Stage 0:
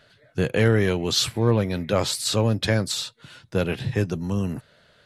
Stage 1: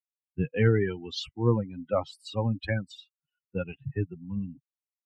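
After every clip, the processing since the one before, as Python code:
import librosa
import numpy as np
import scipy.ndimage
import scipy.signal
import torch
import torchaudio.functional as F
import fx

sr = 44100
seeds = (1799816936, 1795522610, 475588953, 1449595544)

y = fx.bin_expand(x, sr, power=3.0)
y = scipy.signal.sosfilt(scipy.signal.butter(2, 2500.0, 'lowpass', fs=sr, output='sos'), y)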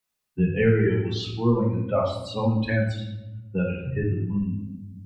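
y = fx.room_shoebox(x, sr, seeds[0], volume_m3=220.0, walls='mixed', distance_m=1.4)
y = fx.band_squash(y, sr, depth_pct=40)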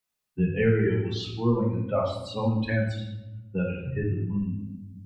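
y = x + 10.0 ** (-20.5 / 20.0) * np.pad(x, (int(157 * sr / 1000.0), 0))[:len(x)]
y = y * 10.0 ** (-2.5 / 20.0)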